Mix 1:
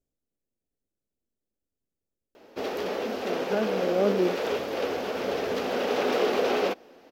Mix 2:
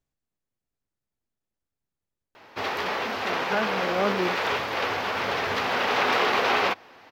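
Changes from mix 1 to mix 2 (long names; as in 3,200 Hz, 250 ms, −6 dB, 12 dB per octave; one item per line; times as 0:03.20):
background: add parametric band 99 Hz +8 dB 0.41 octaves
master: add octave-band graphic EQ 125/250/500/1,000/2,000/4,000 Hz +5/−4/−6/+10/+8/+5 dB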